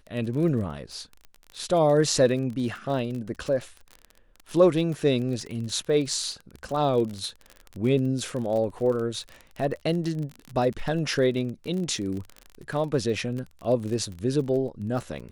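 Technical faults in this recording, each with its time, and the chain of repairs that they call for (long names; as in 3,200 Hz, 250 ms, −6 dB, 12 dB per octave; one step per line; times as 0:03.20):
surface crackle 30 per second −31 dBFS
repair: click removal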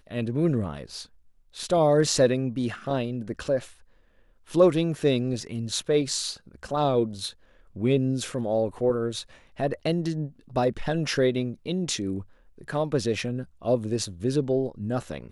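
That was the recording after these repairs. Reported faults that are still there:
none of them is left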